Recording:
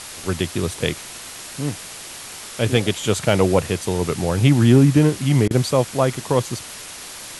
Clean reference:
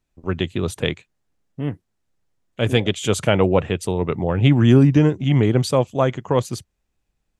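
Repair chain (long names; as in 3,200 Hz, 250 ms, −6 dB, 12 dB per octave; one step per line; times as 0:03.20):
clipped peaks rebuilt −3.5 dBFS
repair the gap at 0:05.48, 26 ms
noise reduction from a noise print 30 dB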